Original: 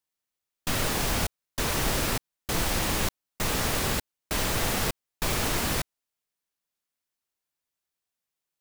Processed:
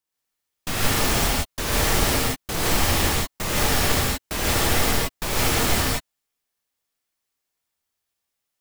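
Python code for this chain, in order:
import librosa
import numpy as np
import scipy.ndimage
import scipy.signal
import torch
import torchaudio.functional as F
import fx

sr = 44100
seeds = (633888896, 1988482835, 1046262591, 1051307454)

y = fx.rev_gated(x, sr, seeds[0], gate_ms=190, shape='rising', drr_db=-5.0)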